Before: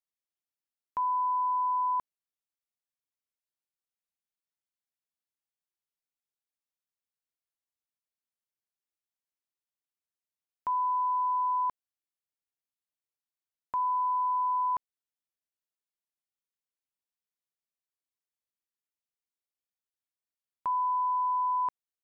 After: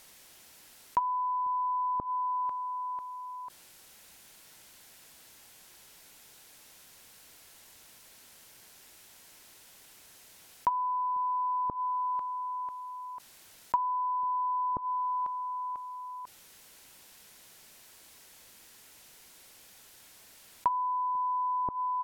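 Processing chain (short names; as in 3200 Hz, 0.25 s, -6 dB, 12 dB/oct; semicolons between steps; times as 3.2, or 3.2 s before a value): notch 1200 Hz, Q 13; feedback echo 0.495 s, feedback 37%, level -21 dB; treble ducked by the level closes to 370 Hz, closed at -27.5 dBFS; fast leveller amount 50%; gain +7.5 dB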